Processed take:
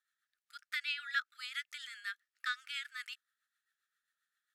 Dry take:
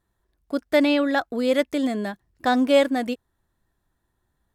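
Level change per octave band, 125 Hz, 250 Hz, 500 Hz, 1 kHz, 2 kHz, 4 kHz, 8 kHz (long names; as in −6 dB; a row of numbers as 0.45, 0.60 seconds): can't be measured, below −40 dB, below −40 dB, −20.5 dB, −8.0 dB, −9.5 dB, −12.0 dB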